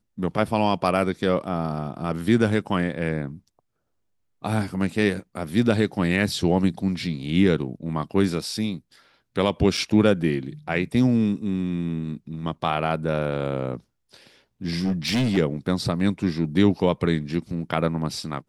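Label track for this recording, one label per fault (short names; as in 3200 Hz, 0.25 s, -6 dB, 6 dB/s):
9.770000	9.780000	gap 5.1 ms
14.840000	15.380000	clipped -18.5 dBFS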